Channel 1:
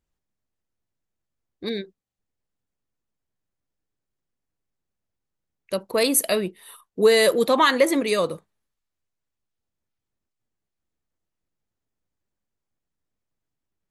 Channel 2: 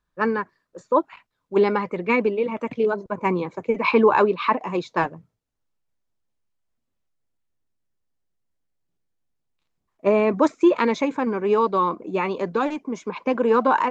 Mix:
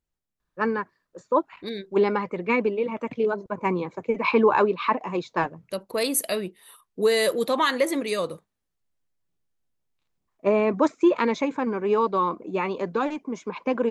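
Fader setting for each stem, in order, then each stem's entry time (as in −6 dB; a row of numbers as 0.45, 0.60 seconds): −4.5, −2.5 decibels; 0.00, 0.40 seconds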